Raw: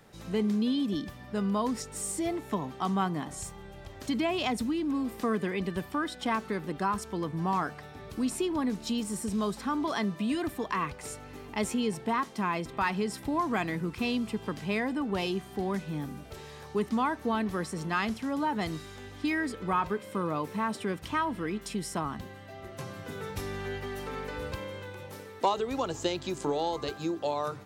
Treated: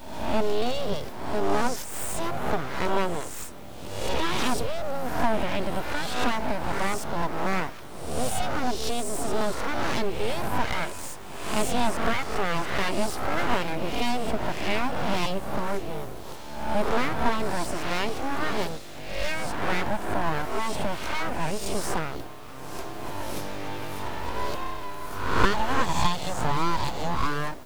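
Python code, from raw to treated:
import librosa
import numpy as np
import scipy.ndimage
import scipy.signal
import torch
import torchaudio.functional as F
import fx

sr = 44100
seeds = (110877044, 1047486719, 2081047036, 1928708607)

p1 = fx.spec_swells(x, sr, rise_s=0.96)
p2 = fx.quant_dither(p1, sr, seeds[0], bits=8, dither='triangular')
p3 = p1 + (p2 * librosa.db_to_amplitude(-10.0))
p4 = fx.graphic_eq_31(p3, sr, hz=(200, 500, 1600), db=(5, 12, -9))
y = np.abs(p4)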